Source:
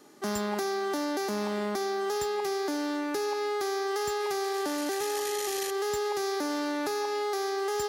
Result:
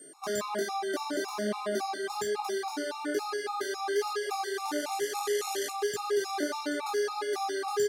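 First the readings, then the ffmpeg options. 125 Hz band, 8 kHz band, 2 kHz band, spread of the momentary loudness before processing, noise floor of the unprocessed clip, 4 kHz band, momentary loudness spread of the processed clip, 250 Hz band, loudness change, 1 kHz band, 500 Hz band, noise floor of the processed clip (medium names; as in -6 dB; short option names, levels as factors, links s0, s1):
no reading, -1.0 dB, 0.0 dB, 1 LU, -32 dBFS, -1.5 dB, 3 LU, -4.0 dB, -1.5 dB, -1.0 dB, -1.5 dB, -39 dBFS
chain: -filter_complex "[0:a]highpass=150,highshelf=f=9300:g=-3.5,areverse,acompressor=mode=upward:threshold=0.00224:ratio=2.5,areverse,flanger=delay=17.5:depth=4.9:speed=1.2,aeval=exprs='val(0)+0.00251*sin(2*PI*8700*n/s)':c=same,asplit=2[s0][s1];[s1]adelay=32,volume=0.447[s2];[s0][s2]amix=inputs=2:normalize=0,asplit=2[s3][s4];[s4]aecho=0:1:781:0.178[s5];[s3][s5]amix=inputs=2:normalize=0,afftfilt=real='re*gt(sin(2*PI*3.6*pts/sr)*(1-2*mod(floor(b*sr/1024/710),2)),0)':imag='im*gt(sin(2*PI*3.6*pts/sr)*(1-2*mod(floor(b*sr/1024/710),2)),0)':win_size=1024:overlap=0.75,volume=1.68"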